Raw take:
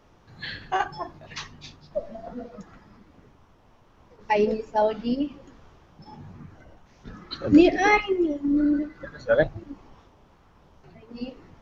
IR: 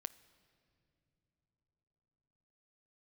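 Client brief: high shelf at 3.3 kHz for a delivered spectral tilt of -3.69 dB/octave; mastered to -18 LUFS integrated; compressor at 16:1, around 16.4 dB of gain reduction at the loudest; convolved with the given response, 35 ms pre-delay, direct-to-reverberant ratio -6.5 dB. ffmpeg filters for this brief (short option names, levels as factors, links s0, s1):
-filter_complex "[0:a]highshelf=f=3300:g=3.5,acompressor=threshold=0.0501:ratio=16,asplit=2[s0][s1];[1:a]atrim=start_sample=2205,adelay=35[s2];[s1][s2]afir=irnorm=-1:irlink=0,volume=3.35[s3];[s0][s3]amix=inputs=2:normalize=0,volume=2.51"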